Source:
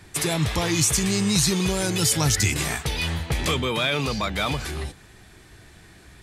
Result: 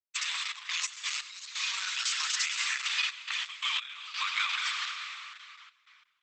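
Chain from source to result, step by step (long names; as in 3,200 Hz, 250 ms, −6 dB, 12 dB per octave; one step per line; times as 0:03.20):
parametric band 3,000 Hz +7.5 dB 1.3 octaves
dead-zone distortion −35 dBFS
downward compressor 8 to 1, threshold −24 dBFS, peak gain reduction 10 dB
Butterworth high-pass 1,000 Hz 72 dB per octave
repeating echo 359 ms, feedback 33%, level −18.5 dB
on a send at −3 dB: convolution reverb RT60 3.0 s, pre-delay 60 ms
on the sum: gate pattern "xxx.x.x..xxxxxx" 87 BPM −12 dB
high-shelf EQ 4,800 Hz −5.5 dB
Opus 10 kbit/s 48,000 Hz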